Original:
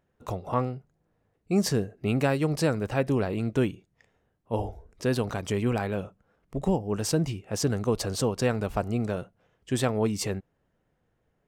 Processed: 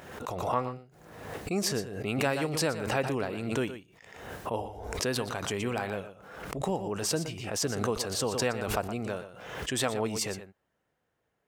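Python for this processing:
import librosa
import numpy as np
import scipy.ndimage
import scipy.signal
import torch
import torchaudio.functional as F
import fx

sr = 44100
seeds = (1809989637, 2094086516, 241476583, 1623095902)

p1 = scipy.signal.sosfilt(scipy.signal.butter(2, 48.0, 'highpass', fs=sr, output='sos'), x)
p2 = fx.low_shelf(p1, sr, hz=380.0, db=-11.0)
p3 = p2 + fx.echo_single(p2, sr, ms=119, db=-11.5, dry=0)
y = fx.pre_swell(p3, sr, db_per_s=50.0)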